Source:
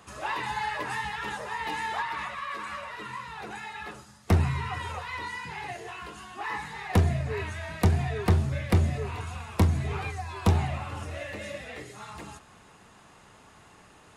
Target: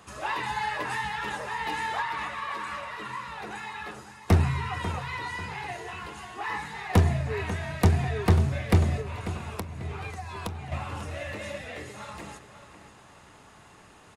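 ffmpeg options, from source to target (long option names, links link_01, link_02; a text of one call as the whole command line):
ffmpeg -i in.wav -filter_complex "[0:a]asettb=1/sr,asplit=3[link_01][link_02][link_03];[link_01]atrim=end=9.014[link_04];[link_02]atrim=start=9.01:end=10.72,asetpts=PTS-STARTPTS,afade=type=in:duration=0.004:curve=qsin,afade=type=out:start_time=1.706:duration=0.004:curve=qsin,acompressor=threshold=-33dB:ratio=16[link_05];[link_03]atrim=start=10.716[link_06];[link_04][link_05]acrossfade=duration=0.004:curve1=hsin:curve2=qsin[link_07];[link_07][link_06]acrossfade=duration=0.004:curve1=qsin:curve2=hsin,aeval=exprs='0.316*(cos(1*acos(clip(val(0)/0.316,-1,1)))-cos(1*PI/2))+0.0178*(cos(3*acos(clip(val(0)/0.316,-1,1)))-cos(3*PI/2))':channel_layout=same,asplit=2[link_08][link_09];[link_09]adelay=542,lowpass=frequency=4900:poles=1,volume=-11.5dB,asplit=2[link_10][link_11];[link_11]adelay=542,lowpass=frequency=4900:poles=1,volume=0.39,asplit=2[link_12][link_13];[link_13]adelay=542,lowpass=frequency=4900:poles=1,volume=0.39,asplit=2[link_14][link_15];[link_15]adelay=542,lowpass=frequency=4900:poles=1,volume=0.39[link_16];[link_10][link_12][link_14][link_16]amix=inputs=4:normalize=0[link_17];[link_08][link_17]amix=inputs=2:normalize=0,volume=2.5dB" out.wav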